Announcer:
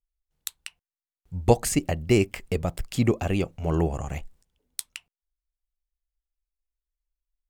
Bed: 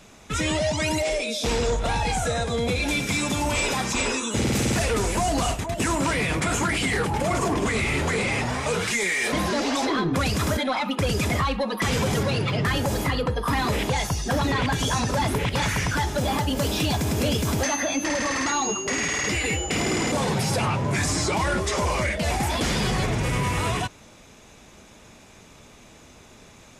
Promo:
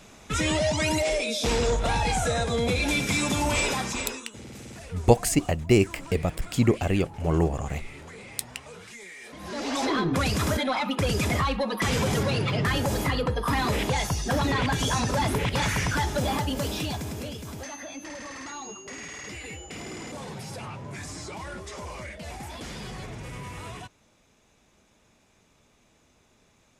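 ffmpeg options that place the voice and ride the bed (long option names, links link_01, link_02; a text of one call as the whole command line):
ffmpeg -i stem1.wav -i stem2.wav -filter_complex "[0:a]adelay=3600,volume=1dB[link_01];[1:a]volume=17.5dB,afade=type=out:start_time=3.59:duration=0.72:silence=0.112202,afade=type=in:start_time=9.39:duration=0.49:silence=0.125893,afade=type=out:start_time=16.17:duration=1.17:silence=0.237137[link_02];[link_01][link_02]amix=inputs=2:normalize=0" out.wav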